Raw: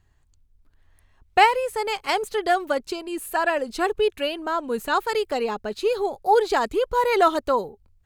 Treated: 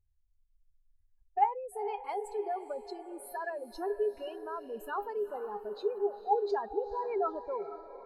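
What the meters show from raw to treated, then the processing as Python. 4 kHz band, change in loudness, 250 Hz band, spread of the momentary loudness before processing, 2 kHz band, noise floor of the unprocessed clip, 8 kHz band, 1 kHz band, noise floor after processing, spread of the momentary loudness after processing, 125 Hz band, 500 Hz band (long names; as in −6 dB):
−24.5 dB, −12.0 dB, −14.5 dB, 9 LU, −20.5 dB, −62 dBFS, −17.0 dB, −11.5 dB, −71 dBFS, 11 LU, can't be measured, −10.5 dB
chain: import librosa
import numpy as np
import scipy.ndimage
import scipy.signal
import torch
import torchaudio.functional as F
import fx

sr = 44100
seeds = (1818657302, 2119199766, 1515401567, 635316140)

y = fx.spec_expand(x, sr, power=2.3)
y = fx.comb_fb(y, sr, f0_hz=410.0, decay_s=0.16, harmonics='all', damping=0.0, mix_pct=80)
y = fx.echo_diffused(y, sr, ms=467, feedback_pct=48, wet_db=-13.0)
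y = y * librosa.db_to_amplitude(-2.5)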